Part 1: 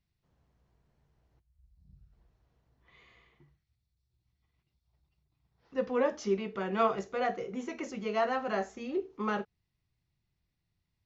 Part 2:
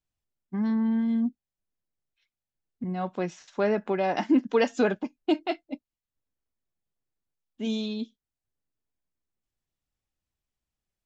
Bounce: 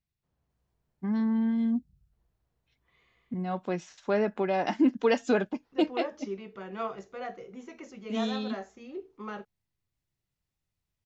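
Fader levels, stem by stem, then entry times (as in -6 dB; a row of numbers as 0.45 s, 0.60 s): -7.0 dB, -1.5 dB; 0.00 s, 0.50 s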